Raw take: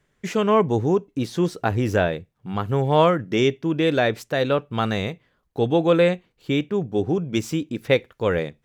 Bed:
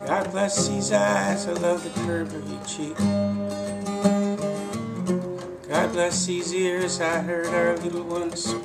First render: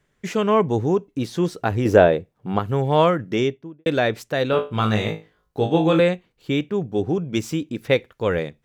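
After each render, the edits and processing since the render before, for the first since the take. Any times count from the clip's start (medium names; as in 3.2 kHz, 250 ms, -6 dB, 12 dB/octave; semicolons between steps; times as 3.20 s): 1.85–2.59 s: peaking EQ 490 Hz +9 dB 2.4 oct; 3.28–3.86 s: studio fade out; 4.51–6.00 s: flutter echo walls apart 3.2 m, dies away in 0.27 s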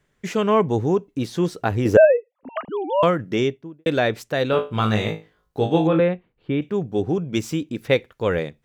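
1.97–3.03 s: formants replaced by sine waves; 5.87–6.62 s: distance through air 450 m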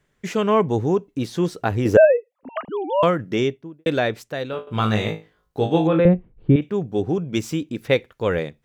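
3.91–4.67 s: fade out, to -12.5 dB; 6.05–6.56 s: tilt EQ -4.5 dB/octave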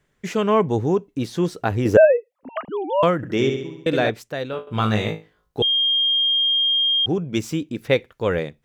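3.16–4.10 s: flutter echo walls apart 11.7 m, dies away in 0.72 s; 5.62–7.06 s: bleep 3.22 kHz -16 dBFS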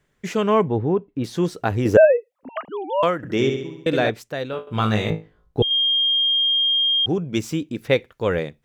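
0.68–1.24 s: distance through air 350 m; 2.51–3.24 s: bass shelf 250 Hz -11 dB; 5.10–5.71 s: tilt EQ -2.5 dB/octave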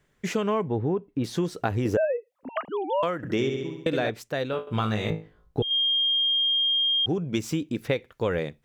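compression 6:1, threshold -22 dBFS, peak gain reduction 13 dB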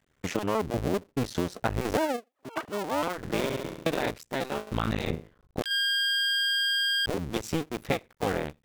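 cycle switcher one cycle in 2, muted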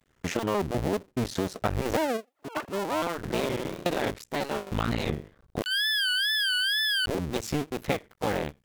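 wow and flutter 140 cents; in parallel at -8.5 dB: wavefolder -27.5 dBFS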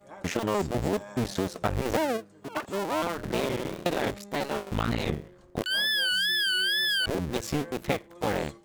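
add bed -23 dB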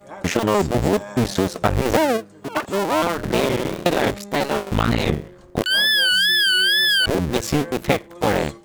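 trim +9 dB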